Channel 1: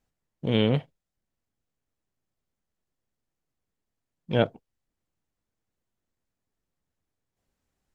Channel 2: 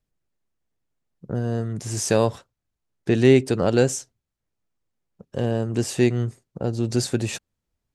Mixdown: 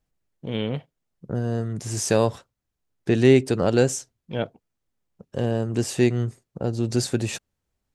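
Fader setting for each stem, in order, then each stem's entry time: -4.5 dB, -0.5 dB; 0.00 s, 0.00 s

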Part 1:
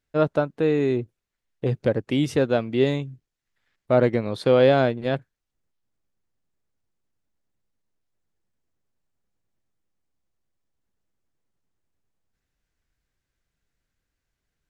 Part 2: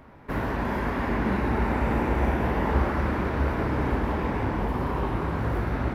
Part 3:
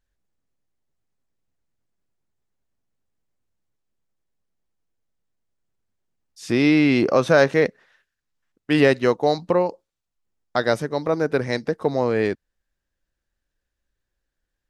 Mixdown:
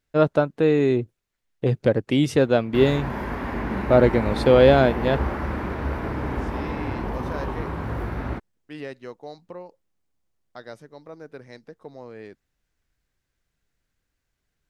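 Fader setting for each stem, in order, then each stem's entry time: +2.5 dB, -2.0 dB, -19.5 dB; 0.00 s, 2.45 s, 0.00 s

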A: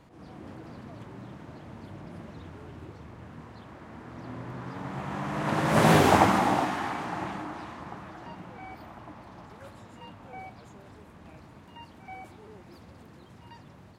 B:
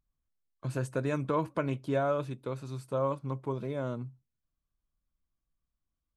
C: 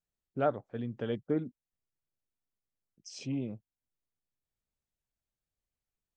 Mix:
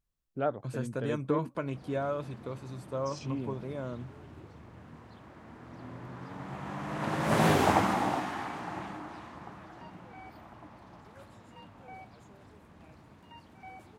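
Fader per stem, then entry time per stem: -5.0 dB, -3.5 dB, -1.5 dB; 1.55 s, 0.00 s, 0.00 s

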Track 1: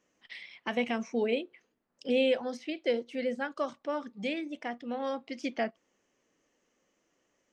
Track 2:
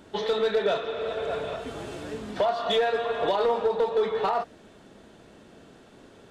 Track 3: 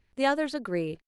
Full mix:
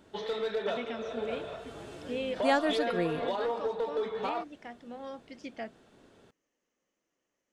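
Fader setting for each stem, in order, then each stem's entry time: -8.5 dB, -8.0 dB, -1.5 dB; 0.00 s, 0.00 s, 2.25 s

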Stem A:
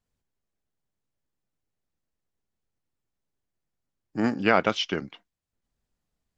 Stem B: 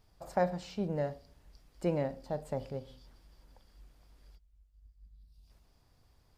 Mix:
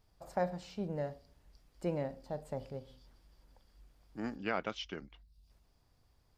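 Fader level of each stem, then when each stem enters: -14.5 dB, -4.0 dB; 0.00 s, 0.00 s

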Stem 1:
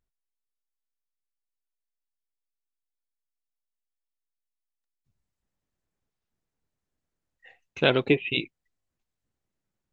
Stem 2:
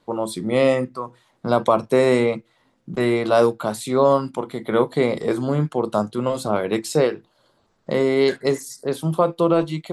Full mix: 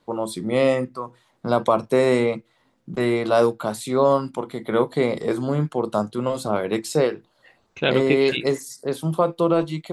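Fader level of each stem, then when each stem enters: 0.0 dB, -1.5 dB; 0.00 s, 0.00 s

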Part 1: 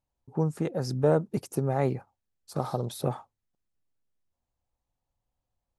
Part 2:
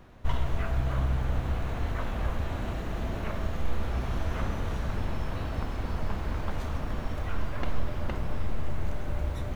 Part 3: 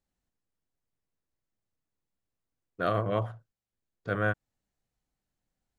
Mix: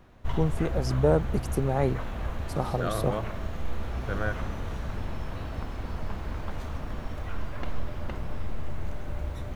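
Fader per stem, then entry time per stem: +0.5 dB, -2.5 dB, -3.5 dB; 0.00 s, 0.00 s, 0.00 s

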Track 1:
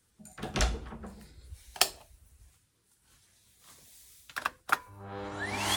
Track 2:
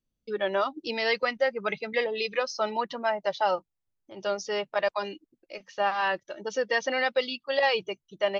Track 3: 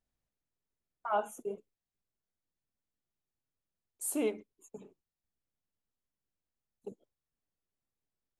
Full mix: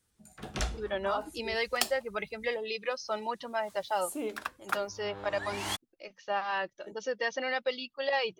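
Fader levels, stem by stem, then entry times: -4.5 dB, -5.5 dB, -4.0 dB; 0.00 s, 0.50 s, 0.00 s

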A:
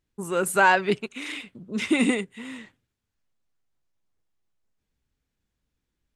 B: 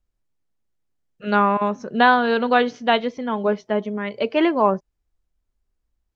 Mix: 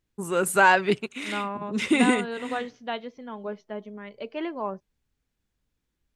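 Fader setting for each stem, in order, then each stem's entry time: +0.5 dB, -13.5 dB; 0.00 s, 0.00 s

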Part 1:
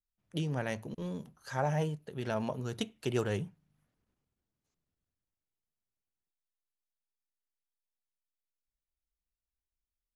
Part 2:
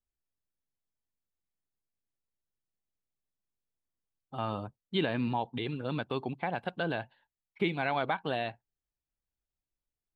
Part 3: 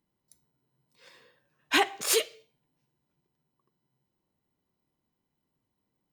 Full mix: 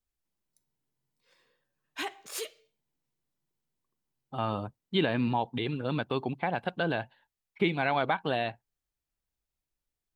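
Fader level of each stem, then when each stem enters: mute, +3.0 dB, -12.0 dB; mute, 0.00 s, 0.25 s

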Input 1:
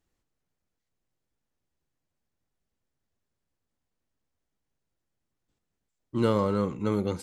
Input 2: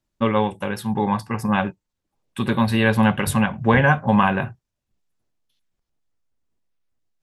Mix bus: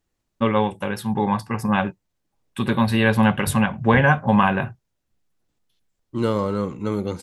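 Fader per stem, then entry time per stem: +2.5 dB, 0.0 dB; 0.00 s, 0.20 s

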